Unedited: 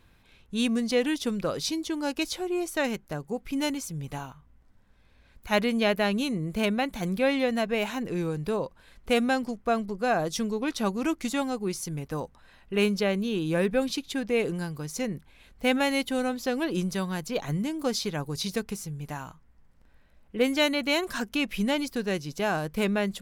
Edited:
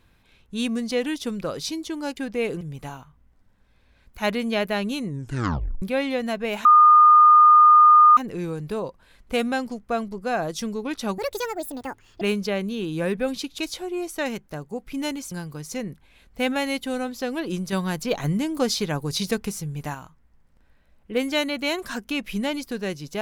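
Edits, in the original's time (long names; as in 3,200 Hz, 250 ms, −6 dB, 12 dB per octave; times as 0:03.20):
0:02.17–0:03.90: swap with 0:14.12–0:14.56
0:06.35: tape stop 0.76 s
0:07.94: insert tone 1,220 Hz −9 dBFS 1.52 s
0:10.95–0:12.75: play speed 174%
0:16.97–0:19.19: clip gain +5 dB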